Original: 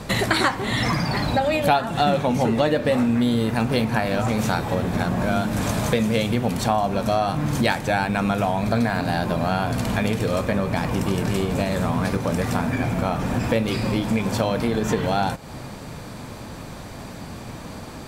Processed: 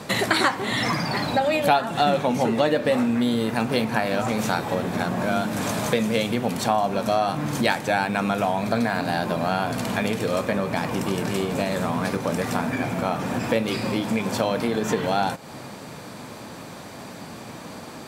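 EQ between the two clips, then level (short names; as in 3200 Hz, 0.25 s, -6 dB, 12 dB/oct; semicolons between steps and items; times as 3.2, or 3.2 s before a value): Bessel high-pass 190 Hz, order 2; 0.0 dB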